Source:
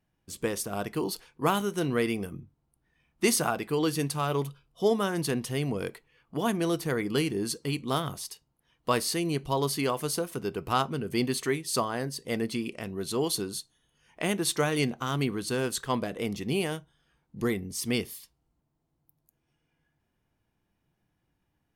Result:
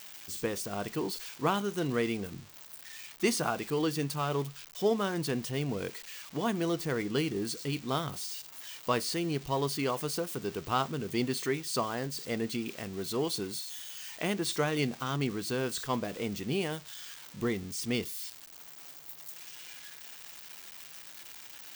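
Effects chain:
spike at every zero crossing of −27.5 dBFS
parametric band 12,000 Hz −14.5 dB 0.76 octaves
level −3 dB

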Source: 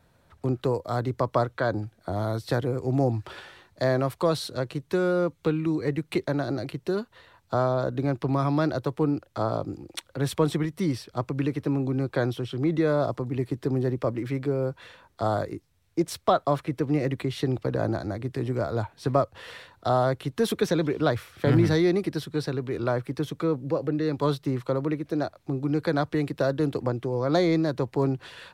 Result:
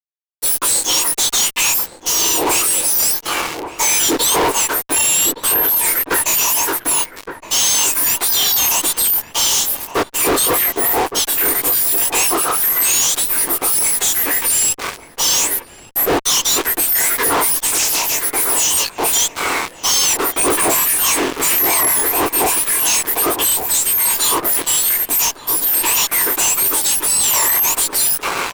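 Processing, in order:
frequency axis turned over on the octave scale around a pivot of 2,000 Hz
low-shelf EQ 340 Hz +3.5 dB
in parallel at −7 dB: bit-depth reduction 8 bits, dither none
on the sum: chorus effect 1.8 Hz, delay 20 ms, depth 7.9 ms
fuzz pedal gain 48 dB, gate −48 dBFS
slap from a distant wall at 200 metres, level −8 dB
0:17.67–0:18.14: highs frequency-modulated by the lows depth 0.3 ms

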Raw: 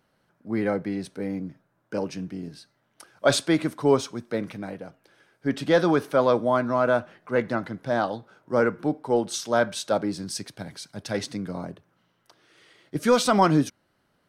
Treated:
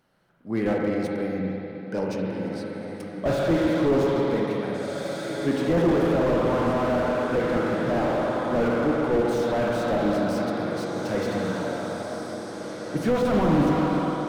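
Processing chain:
on a send: feedback delay with all-pass diffusion 1,919 ms, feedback 51%, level −10 dB
on the sum: spring reverb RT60 3.4 s, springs 42/53 ms, chirp 30 ms, DRR −1 dB
slew-rate limiting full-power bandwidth 53 Hz

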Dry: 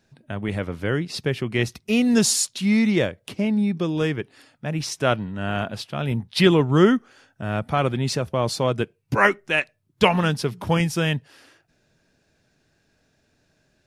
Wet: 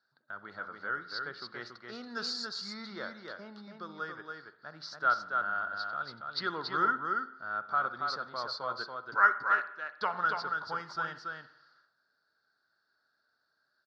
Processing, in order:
pair of resonant band-passes 2,500 Hz, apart 1.7 octaves
high-frequency loss of the air 220 metres
notch filter 3,100 Hz, Q 15
single-tap delay 281 ms −4.5 dB
on a send at −13 dB: convolution reverb RT60 0.70 s, pre-delay 50 ms
on the sum: level +3.5 dB

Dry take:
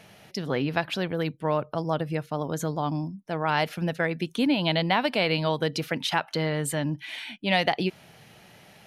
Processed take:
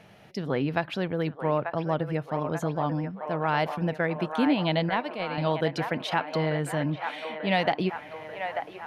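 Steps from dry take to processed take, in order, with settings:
0:04.89–0:05.38: noise gate −21 dBFS, range −10 dB
high-shelf EQ 3,600 Hz −11.5 dB
delay with a band-pass on its return 889 ms, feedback 62%, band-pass 1,100 Hz, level −5.5 dB

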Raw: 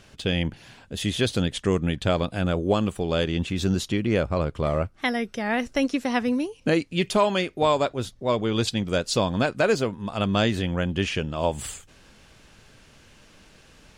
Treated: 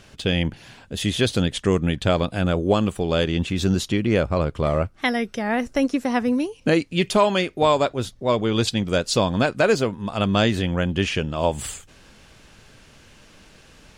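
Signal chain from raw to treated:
0:05.35–0:06.38: dynamic equaliser 3,400 Hz, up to −6 dB, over −42 dBFS, Q 0.78
level +3 dB

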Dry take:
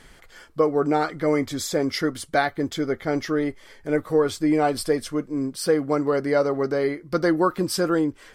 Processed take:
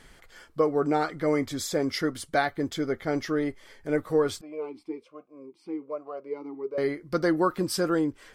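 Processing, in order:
0:04.41–0:06.78: formant filter swept between two vowels a-u 1.2 Hz
level −3.5 dB

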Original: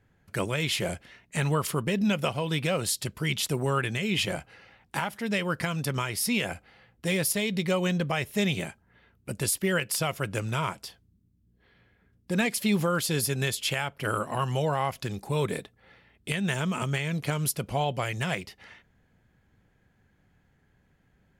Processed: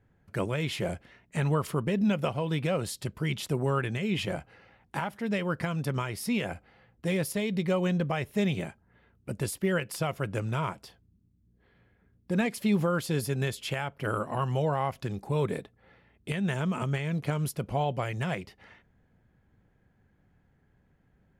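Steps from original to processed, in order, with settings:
high-shelf EQ 2,100 Hz −10.5 dB

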